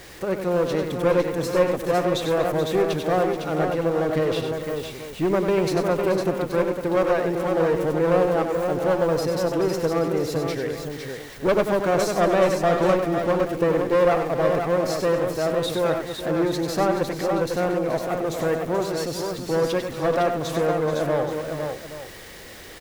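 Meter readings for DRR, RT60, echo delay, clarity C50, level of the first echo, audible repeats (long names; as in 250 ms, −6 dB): no reverb audible, no reverb audible, 96 ms, no reverb audible, −7.0 dB, 5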